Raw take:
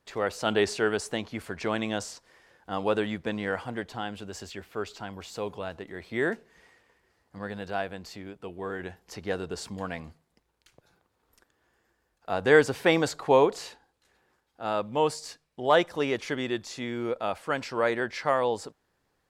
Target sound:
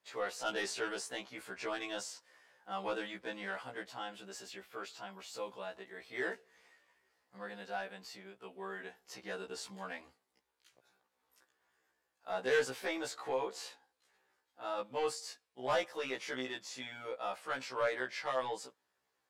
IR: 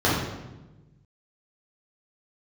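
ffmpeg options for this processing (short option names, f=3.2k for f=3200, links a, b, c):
-filter_complex "[0:a]highpass=f=650:p=1,asettb=1/sr,asplit=3[a][b][c];[a]atrim=end=12.674[d];[b]atrim=start=12.67:end=14.78,asetpts=PTS-STARTPTS,afade=t=in:d=0.004:c=qsin,afade=t=out:st=2.106:d=0.004:c=qsin,acompressor=threshold=-29dB:ratio=2.5[e];[c]atrim=start=14.776[f];[d][e]acrossfade=d=0.004:c1=hsin:c2=qsin[g];[g][f]acrossfade=d=0.004:c1=qsin:c2=hsin,asoftclip=type=tanh:threshold=-21.5dB,afftfilt=real='re*1.73*eq(mod(b,3),0)':imag='im*1.73*eq(mod(b,3),0)':win_size=2048:overlap=0.75,volume=-2.5dB"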